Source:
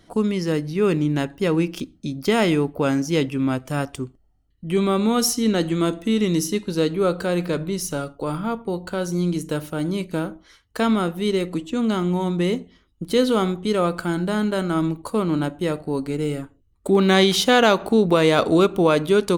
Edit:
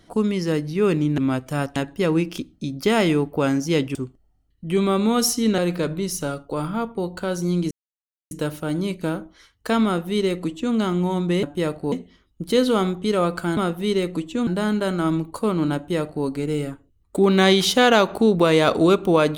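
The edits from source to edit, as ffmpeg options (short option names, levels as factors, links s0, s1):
-filter_complex "[0:a]asplit=10[s0][s1][s2][s3][s4][s5][s6][s7][s8][s9];[s0]atrim=end=1.182[s10];[s1]atrim=start=3.368:end=3.952[s11];[s2]atrim=start=1.178:end=3.372[s12];[s3]atrim=start=3.948:end=5.582[s13];[s4]atrim=start=7.278:end=9.41,asetpts=PTS-STARTPTS,afade=t=out:st=2.128:d=0.004:c=hsin,apad=pad_dur=0.6[s14];[s5]atrim=start=9.41:end=12.532,asetpts=PTS-STARTPTS,afade=t=in:d=0.004:c=hsin[s15];[s6]atrim=start=15.468:end=15.962[s16];[s7]atrim=start=12.528:end=14.182[s17];[s8]atrim=start=10.948:end=11.852[s18];[s9]atrim=start=14.178[s19];[s10][s11]acrossfade=d=0.004:c1=hsin:c2=hsin[s20];[s20][s12]acrossfade=d=0.004:c1=hsin:c2=hsin[s21];[s21][s13]acrossfade=d=0.004:c1=hsin:c2=hsin[s22];[s14][s15]concat=n=2:v=0:a=1[s23];[s22][s23]acrossfade=d=0.004:c1=hsin:c2=hsin[s24];[s24][s16]acrossfade=d=0.004:c1=hsin:c2=hsin[s25];[s25][s17]acrossfade=d=0.004:c1=hsin:c2=hsin[s26];[s26][s18]acrossfade=d=0.004:c1=hsin:c2=hsin[s27];[s27][s19]acrossfade=d=0.004:c1=hsin:c2=hsin"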